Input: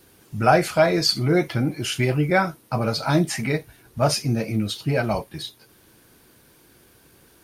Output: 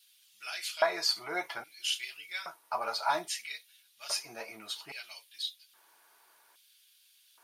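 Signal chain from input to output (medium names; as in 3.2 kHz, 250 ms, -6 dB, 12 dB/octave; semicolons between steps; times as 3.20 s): comb of notches 260 Hz; LFO high-pass square 0.61 Hz 890–3300 Hz; trim -7 dB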